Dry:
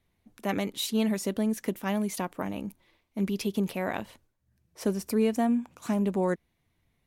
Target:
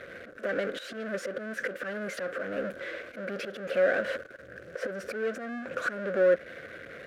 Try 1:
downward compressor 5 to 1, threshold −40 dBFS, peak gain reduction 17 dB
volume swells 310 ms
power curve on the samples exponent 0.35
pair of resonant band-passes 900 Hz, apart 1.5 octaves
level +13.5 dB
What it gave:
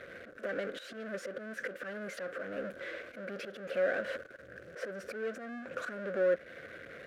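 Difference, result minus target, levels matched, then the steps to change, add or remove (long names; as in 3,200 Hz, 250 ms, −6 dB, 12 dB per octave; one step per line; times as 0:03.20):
downward compressor: peak gain reduction +6 dB
change: downward compressor 5 to 1, threshold −32.5 dBFS, peak gain reduction 11 dB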